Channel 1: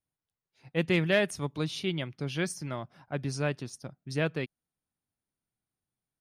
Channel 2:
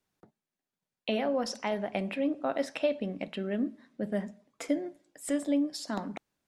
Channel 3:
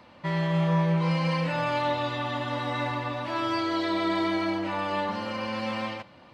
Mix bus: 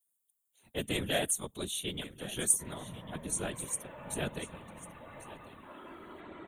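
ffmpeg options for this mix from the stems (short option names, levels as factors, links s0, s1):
-filter_complex "[0:a]highpass=f=150:w=0.5412,highpass=f=150:w=1.3066,tremolo=f=97:d=0.824,aexciter=amount=11.7:drive=2.8:freq=3500,volume=1.33,asplit=2[s0][s1];[s1]volume=0.168[s2];[2:a]adelay=2350,volume=0.158,asplit=2[s3][s4];[s4]volume=0.562[s5];[s2][s5]amix=inputs=2:normalize=0,aecho=0:1:1096:1[s6];[s0][s3][s6]amix=inputs=3:normalize=0,afftfilt=real='hypot(re,im)*cos(2*PI*random(0))':imag='hypot(re,im)*sin(2*PI*random(1))':win_size=512:overlap=0.75,asuperstop=centerf=5000:order=4:qfactor=1.2"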